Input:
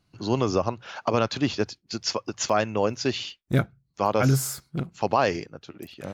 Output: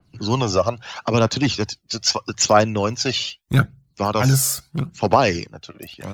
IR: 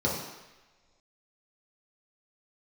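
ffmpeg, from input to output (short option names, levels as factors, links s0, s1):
-filter_complex "[0:a]aphaser=in_gain=1:out_gain=1:delay=1.8:decay=0.53:speed=0.78:type=triangular,acrossover=split=150|540|3400[s0][s1][s2][s3];[s1]asoftclip=type=hard:threshold=0.0944[s4];[s0][s4][s2][s3]amix=inputs=4:normalize=0,adynamicequalizer=threshold=0.01:dfrequency=3100:dqfactor=0.7:tfrequency=3100:tqfactor=0.7:attack=5:release=100:ratio=0.375:range=2.5:mode=boostabove:tftype=highshelf,volume=1.58"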